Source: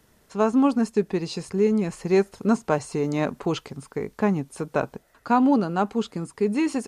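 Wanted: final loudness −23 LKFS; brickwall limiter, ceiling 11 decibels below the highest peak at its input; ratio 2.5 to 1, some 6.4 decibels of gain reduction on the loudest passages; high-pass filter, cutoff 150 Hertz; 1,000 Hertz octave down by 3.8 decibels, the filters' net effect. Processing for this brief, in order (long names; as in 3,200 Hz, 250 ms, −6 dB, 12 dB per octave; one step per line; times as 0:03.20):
high-pass filter 150 Hz
parametric band 1,000 Hz −5 dB
downward compressor 2.5 to 1, threshold −26 dBFS
level +12 dB
brickwall limiter −13 dBFS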